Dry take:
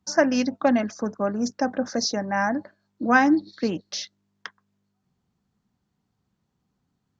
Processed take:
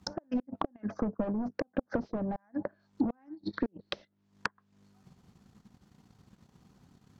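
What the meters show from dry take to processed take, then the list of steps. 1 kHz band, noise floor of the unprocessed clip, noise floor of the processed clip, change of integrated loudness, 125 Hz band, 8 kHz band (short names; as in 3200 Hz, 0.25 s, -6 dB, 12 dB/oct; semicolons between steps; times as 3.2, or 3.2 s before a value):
-15.5 dB, -77 dBFS, -73 dBFS, -12.0 dB, -4.0 dB, n/a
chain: flipped gate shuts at -13 dBFS, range -37 dB; in parallel at -9.5 dB: sine folder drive 15 dB, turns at -12 dBFS; on the sum: compressor 4:1, threshold -35 dBFS, peak gain reduction 14.5 dB; transient shaper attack +6 dB, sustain -11 dB; treble ducked by the level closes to 670 Hz, closed at -30.5 dBFS; gain +1.5 dB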